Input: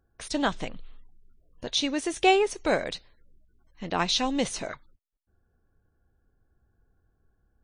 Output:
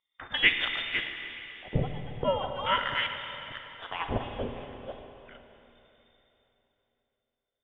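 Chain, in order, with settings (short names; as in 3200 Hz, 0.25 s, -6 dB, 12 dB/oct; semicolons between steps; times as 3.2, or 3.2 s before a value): reverse delay 0.358 s, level -7 dB; inverted band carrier 3600 Hz; dynamic EQ 680 Hz, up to -5 dB, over -41 dBFS, Q 0.8; in parallel at -6 dB: sample gate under -29 dBFS; on the sum: LFO low-pass sine 0.38 Hz 490–2100 Hz; on a send at -5.5 dB: reverb RT60 3.4 s, pre-delay 46 ms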